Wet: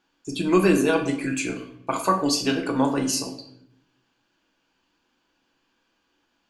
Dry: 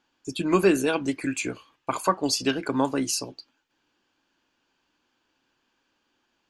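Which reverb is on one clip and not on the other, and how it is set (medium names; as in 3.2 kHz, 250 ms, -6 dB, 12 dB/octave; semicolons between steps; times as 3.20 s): simulated room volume 140 m³, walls mixed, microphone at 0.68 m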